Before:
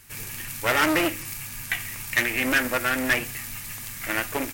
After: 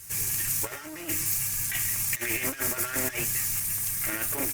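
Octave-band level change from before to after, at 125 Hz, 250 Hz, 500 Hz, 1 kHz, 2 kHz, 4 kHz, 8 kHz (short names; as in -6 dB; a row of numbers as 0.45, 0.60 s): -1.0, -10.0, -9.5, -11.5, -10.0, -6.0, +6.5 dB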